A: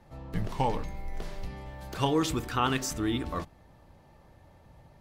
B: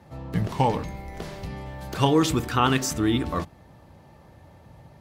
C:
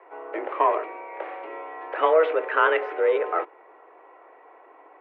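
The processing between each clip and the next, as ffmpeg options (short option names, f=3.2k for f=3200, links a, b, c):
-af "highpass=80,lowshelf=f=210:g=4,volume=5.5dB"
-filter_complex "[0:a]asplit=2[a][b];[b]asoftclip=type=hard:threshold=-22.5dB,volume=-3.5dB[c];[a][c]amix=inputs=2:normalize=0,highpass=f=250:t=q:w=0.5412,highpass=f=250:t=q:w=1.307,lowpass=f=2.3k:t=q:w=0.5176,lowpass=f=2.3k:t=q:w=0.7071,lowpass=f=2.3k:t=q:w=1.932,afreqshift=160"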